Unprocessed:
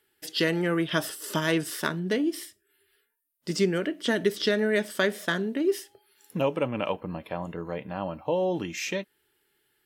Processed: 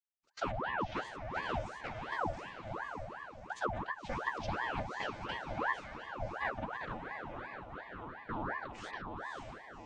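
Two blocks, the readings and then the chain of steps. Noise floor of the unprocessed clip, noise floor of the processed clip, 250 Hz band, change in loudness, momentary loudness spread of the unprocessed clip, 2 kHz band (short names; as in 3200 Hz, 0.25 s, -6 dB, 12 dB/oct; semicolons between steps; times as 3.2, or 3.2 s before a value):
-73 dBFS, -52 dBFS, -17.5 dB, -11.5 dB, 10 LU, -7.5 dB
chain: chord vocoder minor triad, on B3; gate -43 dBFS, range -24 dB; HPF 300 Hz; on a send: diffused feedback echo 0.572 s, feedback 48%, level -3.5 dB; on the sum: ring modulator with a swept carrier 840 Hz, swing 70%, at 2.8 Hz; gain -6.5 dB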